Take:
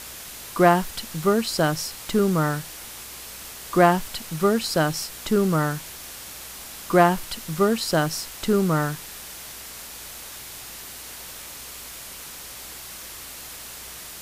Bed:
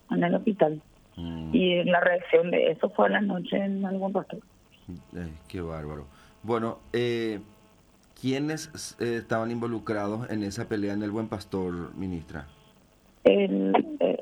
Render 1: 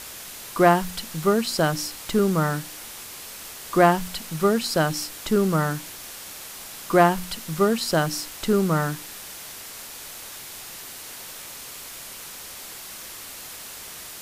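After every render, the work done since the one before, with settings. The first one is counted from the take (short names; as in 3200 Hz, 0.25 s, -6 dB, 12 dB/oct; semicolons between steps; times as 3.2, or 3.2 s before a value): de-hum 60 Hz, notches 5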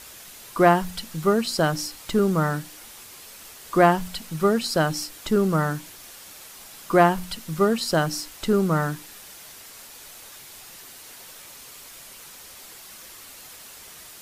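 denoiser 6 dB, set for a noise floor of -39 dBFS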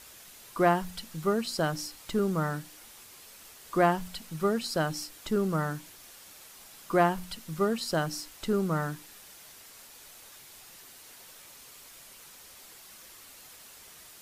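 gain -7 dB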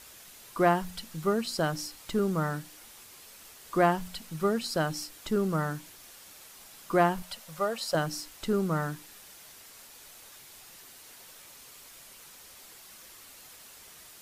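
7.22–7.95 resonant low shelf 440 Hz -8.5 dB, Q 3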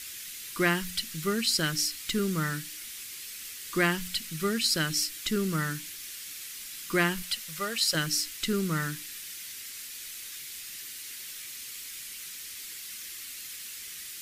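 EQ curve 340 Hz 0 dB, 750 Hz -14 dB, 2000 Hz +10 dB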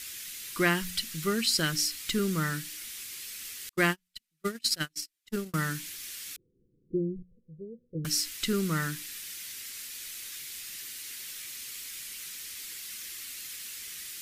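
3.69–5.54 gate -27 dBFS, range -44 dB; 6.36–8.05 rippled Chebyshev low-pass 510 Hz, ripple 6 dB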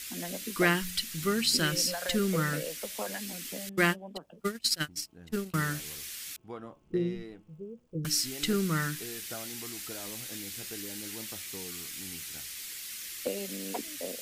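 add bed -15.5 dB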